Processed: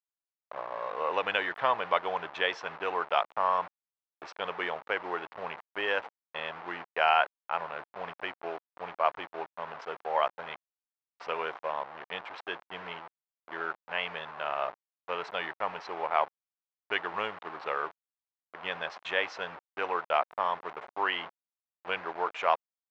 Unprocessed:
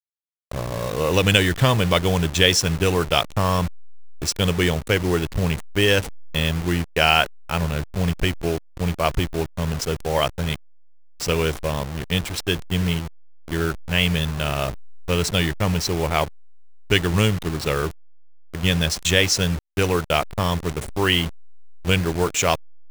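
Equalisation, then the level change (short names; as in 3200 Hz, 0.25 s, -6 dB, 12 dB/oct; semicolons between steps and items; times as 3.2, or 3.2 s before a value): ladder band-pass 1100 Hz, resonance 30%; air absorption 150 m; +7.5 dB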